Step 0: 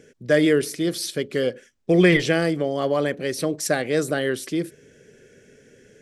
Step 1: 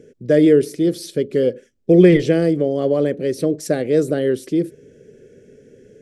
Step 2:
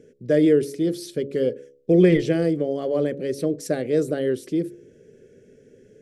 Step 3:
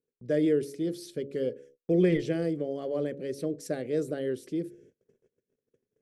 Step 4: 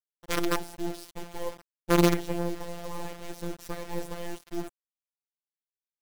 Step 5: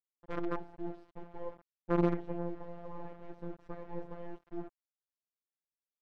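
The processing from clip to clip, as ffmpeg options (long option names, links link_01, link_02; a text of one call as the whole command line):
ffmpeg -i in.wav -af "lowshelf=frequency=660:width_type=q:width=1.5:gain=9.5,volume=-5dB" out.wav
ffmpeg -i in.wav -af "bandreject=frequency=69.8:width_type=h:width=4,bandreject=frequency=139.6:width_type=h:width=4,bandreject=frequency=209.4:width_type=h:width=4,bandreject=frequency=279.2:width_type=h:width=4,bandreject=frequency=349:width_type=h:width=4,bandreject=frequency=418.8:width_type=h:width=4,bandreject=frequency=488.6:width_type=h:width=4,bandreject=frequency=558.4:width_type=h:width=4,volume=-4.5dB" out.wav
ffmpeg -i in.wav -af "agate=range=-30dB:threshold=-47dB:ratio=16:detection=peak,volume=-8dB" out.wav
ffmpeg -i in.wav -af "acrusher=bits=4:dc=4:mix=0:aa=0.000001,afftfilt=real='hypot(re,im)*cos(PI*b)':imag='0':win_size=1024:overlap=0.75,volume=3dB" out.wav
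ffmpeg -i in.wav -af "lowpass=1300,volume=-7dB" out.wav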